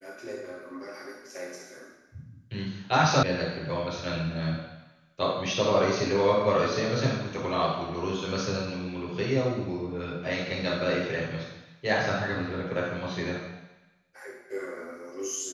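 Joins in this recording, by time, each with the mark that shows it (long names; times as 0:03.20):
0:03.23: cut off before it has died away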